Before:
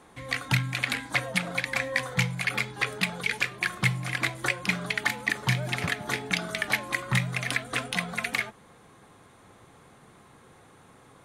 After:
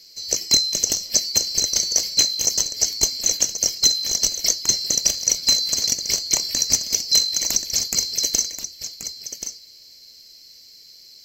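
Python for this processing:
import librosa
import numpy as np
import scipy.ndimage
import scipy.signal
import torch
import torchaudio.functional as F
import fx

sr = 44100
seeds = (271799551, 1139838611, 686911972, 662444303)

p1 = fx.band_swap(x, sr, width_hz=4000)
p2 = fx.band_shelf(p1, sr, hz=1100.0, db=-8.5, octaves=1.2)
p3 = p2 + fx.echo_single(p2, sr, ms=1081, db=-10.0, dry=0)
y = F.gain(torch.from_numpy(p3), 7.5).numpy()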